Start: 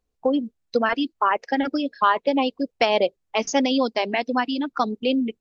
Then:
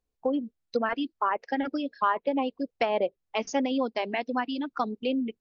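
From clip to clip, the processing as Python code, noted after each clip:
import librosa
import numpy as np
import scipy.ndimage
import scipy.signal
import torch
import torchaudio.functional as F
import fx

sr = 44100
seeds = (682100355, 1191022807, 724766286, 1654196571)

y = fx.env_lowpass_down(x, sr, base_hz=2000.0, full_db=-16.0)
y = F.gain(torch.from_numpy(y), -6.0).numpy()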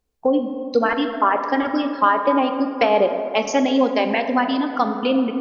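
y = fx.rev_plate(x, sr, seeds[0], rt60_s=2.7, hf_ratio=0.4, predelay_ms=0, drr_db=5.5)
y = F.gain(torch.from_numpy(y), 8.5).numpy()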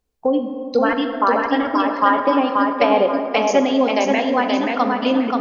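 y = fx.echo_feedback(x, sr, ms=531, feedback_pct=30, wet_db=-3.5)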